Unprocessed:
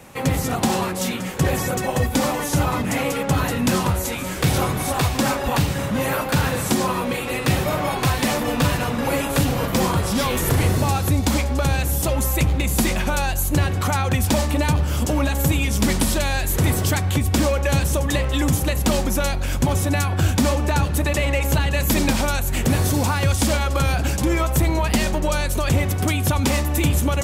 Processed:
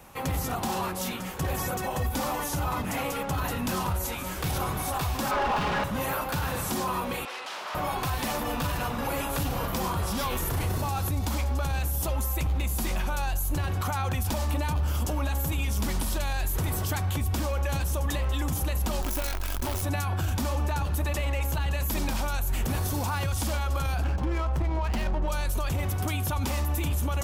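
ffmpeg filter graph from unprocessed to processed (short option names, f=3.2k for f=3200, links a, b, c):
-filter_complex "[0:a]asettb=1/sr,asplit=3[a][b][c];[a]atrim=end=5.314[d];[b]atrim=start=5.31:end=5.84,asetpts=PTS-STARTPTS,afade=t=in:d=0.004:c=qsin,afade=t=out:st=0.526:d=0.004:c=qsin,lowpass=4k,aecho=1:1:4.8:0.62,atrim=end_sample=23373,asplit=2[e][f];[f]highpass=f=720:p=1,volume=31dB,asoftclip=type=tanh:threshold=-8dB[g];[e][g]amix=inputs=2:normalize=0,lowpass=f=1.4k:p=1,volume=-6dB[h];[c]atrim=start=5.836[i];[d][h]acrossfade=d=0.004:c1=hsin:c2=qsin[j];[j][i]acrossfade=d=0.004:c1=qsin:c2=hsin,asettb=1/sr,asplit=3[k][l][m];[k]atrim=end=7.254[n];[l]atrim=start=7.25:end=7.75,asetpts=PTS-STARTPTS,afade=t=in:d=0.004:c=qsin,afade=t=out:st=0.496:d=0.004:c=qsin,aeval=exprs='0.0708*(abs(mod(val(0)/0.0708+3,4)-2)-1)':c=same,highpass=600,lowpass=5.5k[o];[m]atrim=start=7.746[p];[n][o]acrossfade=d=0.004:c1=hsin:c2=qsin[q];[q][p]acrossfade=d=0.004:c1=qsin:c2=hsin,asettb=1/sr,asplit=3[r][s][t];[r]atrim=end=19.024[u];[s]atrim=start=19.02:end=19.82,asetpts=PTS-STARTPTS,afade=t=in:d=0.004:c=qsin,afade=t=out:st=0.796:d=0.004:c=qsin,highpass=f=63:p=1,aecho=1:1:3.1:0.82,atrim=end_sample=35280,acrusher=bits=4:dc=4:mix=0:aa=0.000001[v];[t]atrim=start=19.816[w];[u][v]acrossfade=d=0.004:c1=hsin:c2=qsin[x];[x][w]acrossfade=d=0.004:c1=qsin:c2=hsin,asettb=1/sr,asplit=3[y][z][aa];[y]atrim=end=24.044[ab];[z]atrim=start=24.04:end=25.28,asetpts=PTS-STARTPTS,afade=t=in:d=0.004:c=qsin,afade=t=out:st=1.236:d=0.004:c=qsin,bandreject=f=3.6k:w=18,adynamicsmooth=sensitivity=2.5:basefreq=930[ac];[aa]atrim=start=25.276[ad];[ab][ac]acrossfade=d=0.004:c1=hsin:c2=qsin[ae];[ae][ad]acrossfade=d=0.004:c1=qsin:c2=hsin,equalizer=f=125:t=o:w=1:g=-8,equalizer=f=250:t=o:w=1:g=-7,equalizer=f=500:t=o:w=1:g=-7,equalizer=f=2k:t=o:w=1:g=-7,equalizer=f=4k:t=o:w=1:g=-4,equalizer=f=8k:t=o:w=1:g=-7,alimiter=limit=-20.5dB:level=0:latency=1:release=22"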